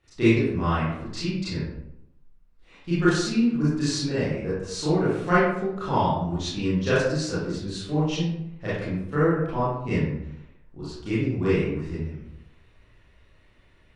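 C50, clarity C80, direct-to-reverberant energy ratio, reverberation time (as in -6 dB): -1.5 dB, 2.5 dB, -12.5 dB, 0.80 s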